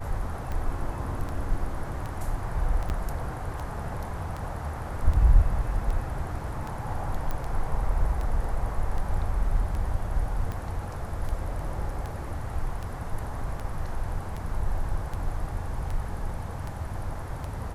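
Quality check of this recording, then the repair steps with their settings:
tick 78 rpm -22 dBFS
2.89–2.90 s: dropout 9.5 ms
7.31 s: pop -18 dBFS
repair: de-click; interpolate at 2.89 s, 9.5 ms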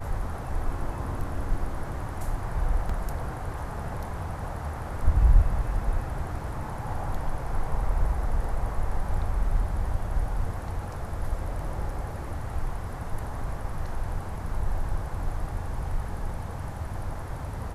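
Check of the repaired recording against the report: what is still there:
nothing left

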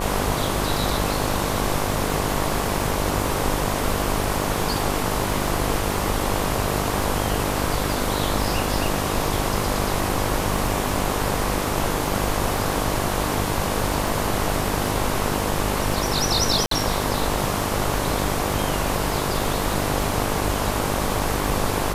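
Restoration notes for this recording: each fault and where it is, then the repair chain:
buzz 50 Hz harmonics 23 -27 dBFS
crackle 25 per s -27 dBFS
16.66–16.71 s: dropout 53 ms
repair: de-click; de-hum 50 Hz, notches 23; interpolate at 16.66 s, 53 ms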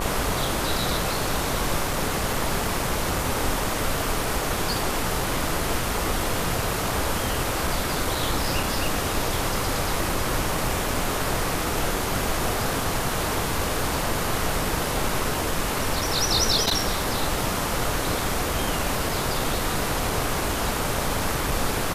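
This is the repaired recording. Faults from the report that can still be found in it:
nothing left

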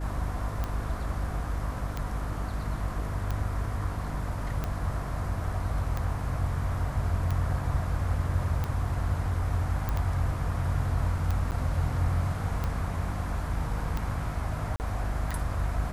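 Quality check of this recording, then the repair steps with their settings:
hum 50 Hz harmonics 6 -34 dBFS
tick 45 rpm -18 dBFS
9.89 s: pop -17 dBFS
11.51–11.52 s: dropout 9 ms
14.76–14.80 s: dropout 39 ms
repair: de-click; de-hum 50 Hz, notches 6; interpolate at 11.51 s, 9 ms; interpolate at 14.76 s, 39 ms

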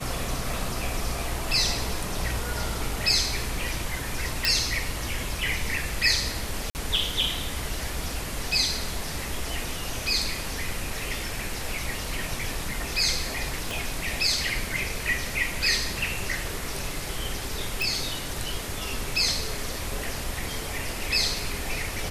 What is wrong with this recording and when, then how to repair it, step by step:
4.45 s: pop
6.70–6.75 s: dropout 49 ms
13.71 s: pop
17.82 s: pop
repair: de-click; interpolate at 6.70 s, 49 ms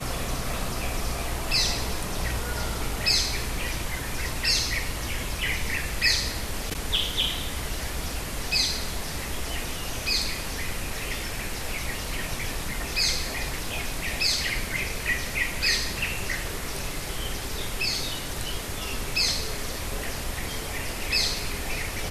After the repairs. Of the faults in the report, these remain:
13.71 s: pop

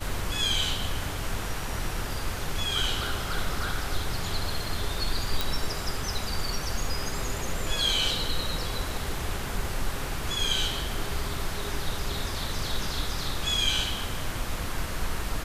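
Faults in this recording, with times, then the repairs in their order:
5.41 s: pop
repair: de-click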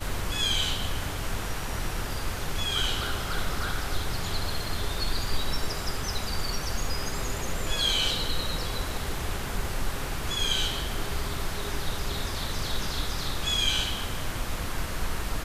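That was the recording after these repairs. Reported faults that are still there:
nothing left

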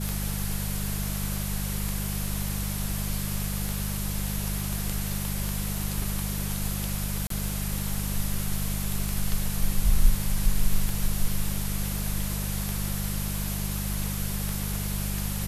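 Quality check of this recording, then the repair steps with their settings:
hum 50 Hz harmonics 4 -31 dBFS
tick 33 1/3 rpm
7.27–7.30 s: dropout 33 ms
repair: de-click; de-hum 50 Hz, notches 4; interpolate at 7.27 s, 33 ms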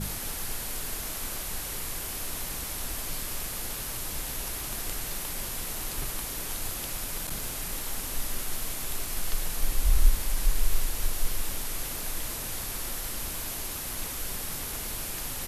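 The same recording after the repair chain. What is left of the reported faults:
nothing left

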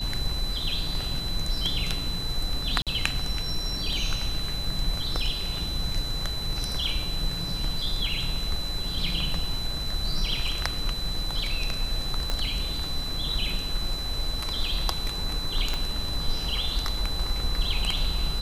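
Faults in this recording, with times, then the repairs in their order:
whine 4 kHz -32 dBFS
2.82–2.87 s: dropout 47 ms
12.30 s: pop -14 dBFS
15.74 s: pop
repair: de-click; band-stop 4 kHz, Q 30; interpolate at 2.82 s, 47 ms

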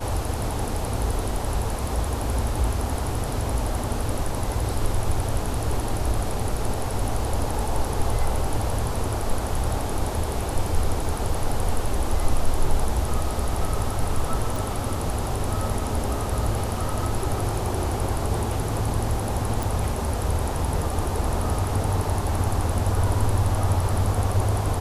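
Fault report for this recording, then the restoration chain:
14.56 s: pop
19.63 s: pop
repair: de-click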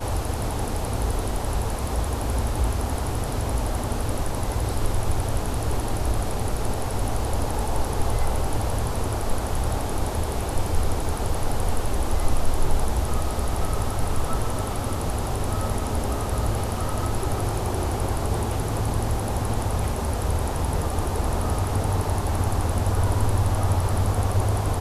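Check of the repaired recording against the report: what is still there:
nothing left

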